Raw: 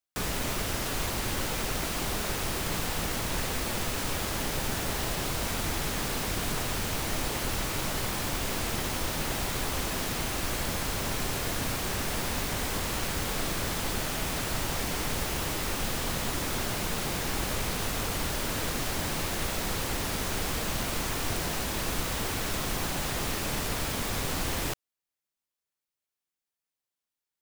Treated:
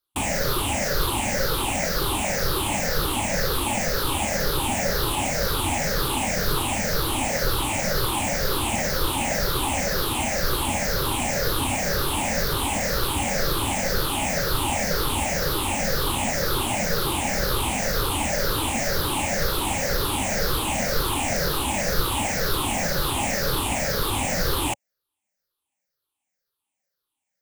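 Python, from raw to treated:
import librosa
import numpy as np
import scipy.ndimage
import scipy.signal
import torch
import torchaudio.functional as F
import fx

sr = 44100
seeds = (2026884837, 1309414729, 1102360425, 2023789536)

y = fx.spec_ripple(x, sr, per_octave=0.6, drift_hz=-2.0, depth_db=17)
y = fx.small_body(y, sr, hz=(560.0, 820.0), ring_ms=30, db=6)
y = F.gain(torch.from_numpy(y), 3.0).numpy()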